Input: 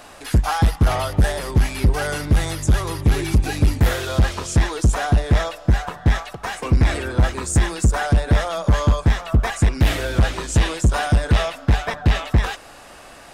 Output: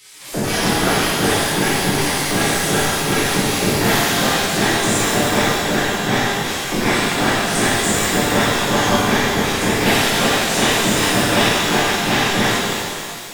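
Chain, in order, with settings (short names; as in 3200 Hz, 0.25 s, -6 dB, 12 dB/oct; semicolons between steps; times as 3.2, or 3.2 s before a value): spectral gate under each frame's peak -15 dB weak; shimmer reverb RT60 2.2 s, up +12 st, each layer -8 dB, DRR -10.5 dB; gain +1 dB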